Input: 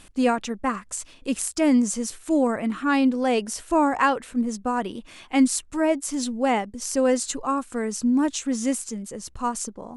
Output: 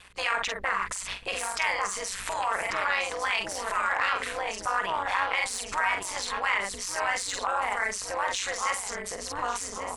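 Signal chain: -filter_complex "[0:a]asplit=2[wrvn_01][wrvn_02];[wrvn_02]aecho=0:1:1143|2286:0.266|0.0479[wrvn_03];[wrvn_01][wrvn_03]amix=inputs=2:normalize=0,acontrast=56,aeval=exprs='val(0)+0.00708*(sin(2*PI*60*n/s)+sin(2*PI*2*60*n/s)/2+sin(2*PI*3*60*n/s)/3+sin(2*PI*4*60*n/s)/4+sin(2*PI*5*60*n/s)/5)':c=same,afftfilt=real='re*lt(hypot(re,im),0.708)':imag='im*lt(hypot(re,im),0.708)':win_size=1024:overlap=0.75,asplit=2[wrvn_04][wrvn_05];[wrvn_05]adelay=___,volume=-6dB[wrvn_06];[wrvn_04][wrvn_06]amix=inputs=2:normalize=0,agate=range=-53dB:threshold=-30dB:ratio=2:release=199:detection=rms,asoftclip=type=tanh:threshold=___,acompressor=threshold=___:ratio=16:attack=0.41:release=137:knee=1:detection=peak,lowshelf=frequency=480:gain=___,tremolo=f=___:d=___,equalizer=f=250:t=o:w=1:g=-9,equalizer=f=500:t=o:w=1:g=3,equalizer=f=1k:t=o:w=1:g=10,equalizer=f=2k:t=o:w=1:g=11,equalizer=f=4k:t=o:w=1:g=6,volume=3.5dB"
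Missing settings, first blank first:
46, -11dB, -30dB, -4.5, 190, 0.788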